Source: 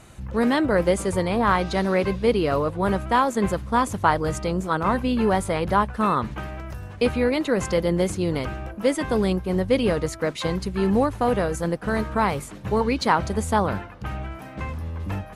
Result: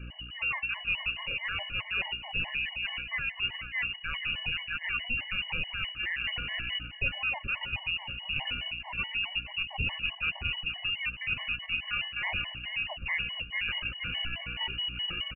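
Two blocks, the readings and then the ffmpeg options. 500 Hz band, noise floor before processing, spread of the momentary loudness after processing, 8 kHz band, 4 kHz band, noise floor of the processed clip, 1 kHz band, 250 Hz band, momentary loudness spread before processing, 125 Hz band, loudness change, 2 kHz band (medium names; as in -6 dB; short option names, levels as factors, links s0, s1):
-30.5 dB, -40 dBFS, 3 LU, under -40 dB, +5.0 dB, -45 dBFS, -20.5 dB, -27.5 dB, 11 LU, -16.5 dB, -8.5 dB, +1.0 dB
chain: -filter_complex "[0:a]asplit=2[s0][s1];[s1]adelay=472,lowpass=f=1500:p=1,volume=0.316,asplit=2[s2][s3];[s3]adelay=472,lowpass=f=1500:p=1,volume=0.47,asplit=2[s4][s5];[s5]adelay=472,lowpass=f=1500:p=1,volume=0.47,asplit=2[s6][s7];[s7]adelay=472,lowpass=f=1500:p=1,volume=0.47,asplit=2[s8][s9];[s9]adelay=472,lowpass=f=1500:p=1,volume=0.47[s10];[s0][s2][s4][s6][s8][s10]amix=inputs=6:normalize=0,lowpass=f=2600:t=q:w=0.5098,lowpass=f=2600:t=q:w=0.6013,lowpass=f=2600:t=q:w=0.9,lowpass=f=2600:t=q:w=2.563,afreqshift=-3000,asubboost=boost=11:cutoff=110,aeval=exprs='val(0)+0.00282*(sin(2*PI*60*n/s)+sin(2*PI*2*60*n/s)/2+sin(2*PI*3*60*n/s)/3+sin(2*PI*4*60*n/s)/4+sin(2*PI*5*60*n/s)/5)':c=same,areverse,acompressor=threshold=0.0398:ratio=6,areverse,tiltshelf=f=700:g=6,afftfilt=real='re*gt(sin(2*PI*4.7*pts/sr)*(1-2*mod(floor(b*sr/1024/570),2)),0)':imag='im*gt(sin(2*PI*4.7*pts/sr)*(1-2*mod(floor(b*sr/1024/570),2)),0)':win_size=1024:overlap=0.75,volume=1.88"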